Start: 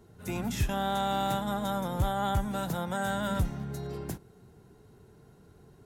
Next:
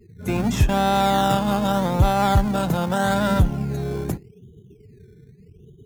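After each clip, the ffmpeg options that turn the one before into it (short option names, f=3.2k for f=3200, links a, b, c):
-filter_complex "[0:a]afftdn=nr=34:nf=-47,asplit=2[a][b];[b]acrusher=samples=18:mix=1:aa=0.000001:lfo=1:lforange=10.8:lforate=0.82,volume=-6.5dB[c];[a][c]amix=inputs=2:normalize=0,volume=8dB"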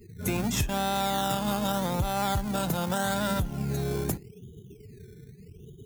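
-af "highshelf=f=4.9k:g=-5.5,acompressor=threshold=-26dB:ratio=6,crystalizer=i=3.5:c=0"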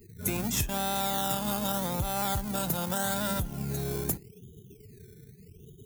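-af "highshelf=f=7.7k:g=11,volume=-3.5dB"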